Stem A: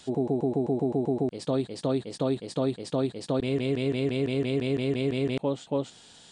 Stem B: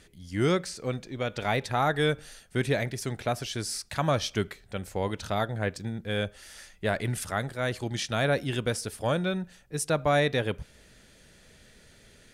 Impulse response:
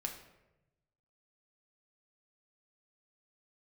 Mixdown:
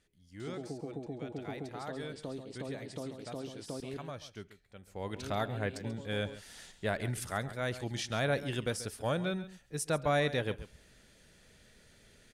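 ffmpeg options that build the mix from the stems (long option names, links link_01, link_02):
-filter_complex "[0:a]acompressor=threshold=-43dB:ratio=2,adelay=400,volume=-4dB,asplit=3[link_01][link_02][link_03];[link_01]atrim=end=3.97,asetpts=PTS-STARTPTS,afade=type=out:start_time=3.966:duration=0.004:curve=hsin[link_04];[link_02]atrim=start=3.97:end=5.16,asetpts=PTS-STARTPTS,volume=0[link_05];[link_03]atrim=start=5.16,asetpts=PTS-STARTPTS,afade=type=in:duration=0.004:curve=hsin[link_06];[link_04][link_05][link_06]concat=n=3:v=0:a=1,asplit=2[link_07][link_08];[link_08]volume=-8.5dB[link_09];[1:a]volume=-5.5dB,afade=type=in:start_time=4.86:duration=0.36:silence=0.237137,asplit=3[link_10][link_11][link_12];[link_11]volume=-15dB[link_13];[link_12]apad=whole_len=296170[link_14];[link_07][link_14]sidechaincompress=threshold=-38dB:ratio=8:attack=16:release=472[link_15];[link_09][link_13]amix=inputs=2:normalize=0,aecho=0:1:136:1[link_16];[link_15][link_10][link_16]amix=inputs=3:normalize=0"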